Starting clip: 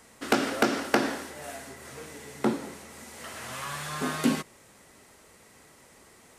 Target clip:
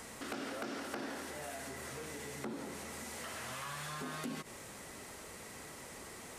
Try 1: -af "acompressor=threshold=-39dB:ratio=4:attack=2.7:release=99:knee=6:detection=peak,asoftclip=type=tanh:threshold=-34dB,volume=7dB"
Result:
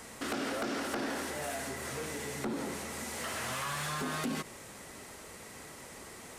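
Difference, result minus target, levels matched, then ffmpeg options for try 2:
downward compressor: peak gain reduction −8 dB
-af "acompressor=threshold=-49.5dB:ratio=4:attack=2.7:release=99:knee=6:detection=peak,asoftclip=type=tanh:threshold=-34dB,volume=7dB"

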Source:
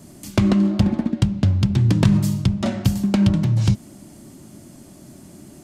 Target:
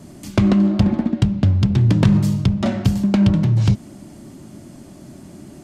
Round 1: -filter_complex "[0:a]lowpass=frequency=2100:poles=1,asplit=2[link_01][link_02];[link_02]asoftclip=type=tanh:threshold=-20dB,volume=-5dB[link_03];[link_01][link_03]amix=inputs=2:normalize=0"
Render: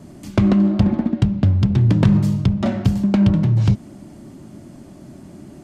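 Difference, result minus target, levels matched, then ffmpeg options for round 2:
4,000 Hz band −3.5 dB
-filter_complex "[0:a]lowpass=frequency=4300:poles=1,asplit=2[link_01][link_02];[link_02]asoftclip=type=tanh:threshold=-20dB,volume=-5dB[link_03];[link_01][link_03]amix=inputs=2:normalize=0"

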